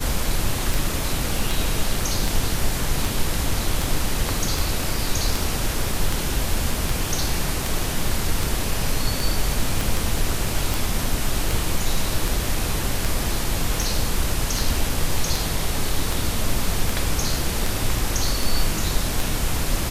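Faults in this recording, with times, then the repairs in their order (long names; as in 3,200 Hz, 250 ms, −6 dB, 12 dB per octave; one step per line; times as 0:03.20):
scratch tick 78 rpm
0:09.81: click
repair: click removal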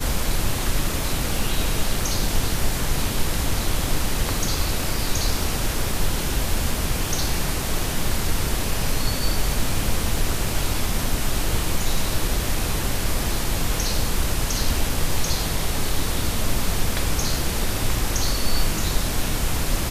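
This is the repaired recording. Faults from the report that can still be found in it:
0:09.81: click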